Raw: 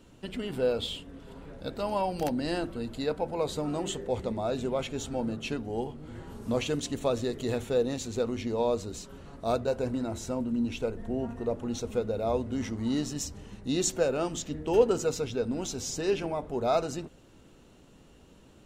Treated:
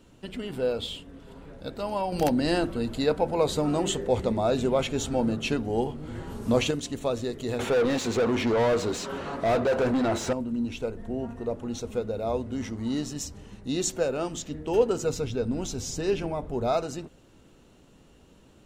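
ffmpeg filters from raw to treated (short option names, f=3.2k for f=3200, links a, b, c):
-filter_complex "[0:a]asettb=1/sr,asplit=3[a][b][c];[a]atrim=end=2.124[d];[b]atrim=start=2.12:end=6.71,asetpts=PTS-STARTPTS,afade=t=in:d=0.004:c=qsin,afade=t=out:st=4.586:d=0.004:c=qsin,acontrast=52[e];[c]atrim=start=6.706[f];[d][e]acrossfade=d=0.004:c1=hsin:c2=qsin[g];[g][f]acrossfade=d=0.004:c1=qsin:c2=hsin,asettb=1/sr,asplit=3[h][i][j];[h]atrim=end=7.594[k];[i]atrim=start=7.59:end=10.33,asetpts=PTS-STARTPTS,afade=t=in:d=0.004:c=qsin,afade=t=out:st=2.736:d=0.004:c=qsin,asplit=2[l][m];[m]highpass=f=720:p=1,volume=28dB,asoftclip=type=tanh:threshold=-16dB[n];[l][n]amix=inputs=2:normalize=0,lowpass=f=1.7k:p=1,volume=-6dB[o];[j]atrim=start=10.326[p];[k][o]acrossfade=d=0.004:c1=hsin:c2=qsin[q];[q][p]acrossfade=d=0.004:c1=qsin:c2=hsin,asettb=1/sr,asplit=3[r][s][t];[r]atrim=end=15.034[u];[s]atrim=start=15.03:end=16.73,asetpts=PTS-STARTPTS,afade=t=in:d=0.004:c=qsin,afade=t=out:st=1.696:d=0.004:c=qsin,lowshelf=f=160:g=9[v];[t]atrim=start=16.726[w];[u][v]acrossfade=d=0.004:c1=hsin:c2=qsin[x];[x][w]acrossfade=d=0.004:c1=qsin:c2=hsin"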